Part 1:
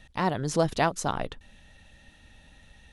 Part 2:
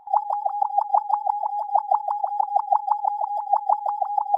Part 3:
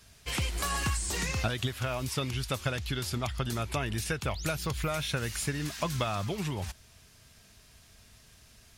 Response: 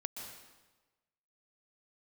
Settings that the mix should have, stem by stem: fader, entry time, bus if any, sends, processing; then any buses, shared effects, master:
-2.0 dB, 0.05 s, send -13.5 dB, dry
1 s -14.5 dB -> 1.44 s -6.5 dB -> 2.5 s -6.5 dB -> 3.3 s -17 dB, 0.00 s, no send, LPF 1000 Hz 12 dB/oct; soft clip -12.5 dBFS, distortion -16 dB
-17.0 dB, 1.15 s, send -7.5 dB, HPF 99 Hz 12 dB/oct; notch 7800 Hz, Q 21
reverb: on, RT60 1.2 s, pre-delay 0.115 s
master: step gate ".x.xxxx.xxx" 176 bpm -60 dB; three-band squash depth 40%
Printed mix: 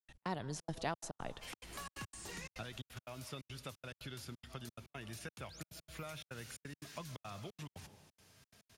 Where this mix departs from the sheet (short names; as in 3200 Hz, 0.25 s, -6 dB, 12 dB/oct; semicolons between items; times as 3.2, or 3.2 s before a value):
stem 1 -2.0 dB -> -11.0 dB; stem 2: muted